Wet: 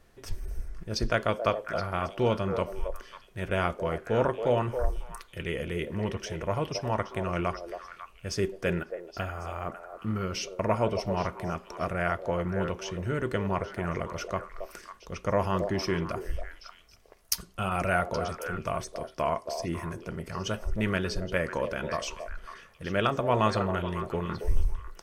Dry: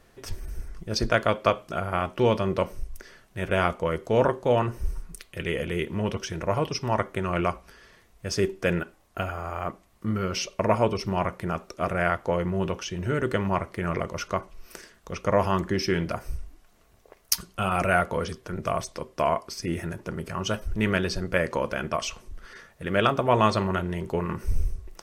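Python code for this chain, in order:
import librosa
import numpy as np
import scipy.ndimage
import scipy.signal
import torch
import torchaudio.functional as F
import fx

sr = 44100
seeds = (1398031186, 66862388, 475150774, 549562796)

p1 = fx.low_shelf(x, sr, hz=68.0, db=6.0)
p2 = p1 + fx.echo_stepped(p1, sr, ms=274, hz=540.0, octaves=1.4, feedback_pct=70, wet_db=-5.0, dry=0)
y = p2 * 10.0 ** (-4.5 / 20.0)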